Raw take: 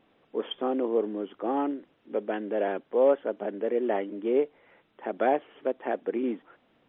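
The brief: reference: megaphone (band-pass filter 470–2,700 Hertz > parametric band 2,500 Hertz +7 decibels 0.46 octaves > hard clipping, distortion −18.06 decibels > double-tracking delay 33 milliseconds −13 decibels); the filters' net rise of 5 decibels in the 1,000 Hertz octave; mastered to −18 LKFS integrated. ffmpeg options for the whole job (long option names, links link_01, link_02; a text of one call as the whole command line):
ffmpeg -i in.wav -filter_complex "[0:a]highpass=470,lowpass=2700,equalizer=frequency=1000:width_type=o:gain=8,equalizer=frequency=2500:width_type=o:width=0.46:gain=7,asoftclip=type=hard:threshold=-17dB,asplit=2[link_01][link_02];[link_02]adelay=33,volume=-13dB[link_03];[link_01][link_03]amix=inputs=2:normalize=0,volume=11.5dB" out.wav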